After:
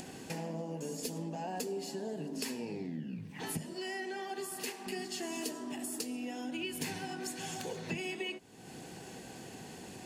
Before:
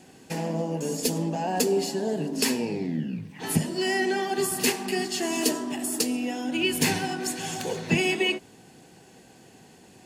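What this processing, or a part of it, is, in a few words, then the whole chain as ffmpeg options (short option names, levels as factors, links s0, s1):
upward and downward compression: -filter_complex "[0:a]acompressor=mode=upward:threshold=0.00562:ratio=2.5,acompressor=threshold=0.00562:ratio=3,asettb=1/sr,asplit=3[s0][s1][s2];[s0]atrim=end=3.734[s3];[s1]atrim=start=3.73:end=4.87,asetpts=PTS-STARTPTS,afade=t=in:d=0.004:c=qsin,afade=t=out:st=1.136:d=0.004:c=qsin,bass=f=250:g=-10,treble=f=4000:g=-2[s4];[s2]atrim=start=4.866[s5];[s3][s4]acrossfade=d=0.004:c1=hsin:c2=qsin[s6];[s6][s5]acrossfade=d=0.004:c1=qsin:c2=hsin,volume=1.41"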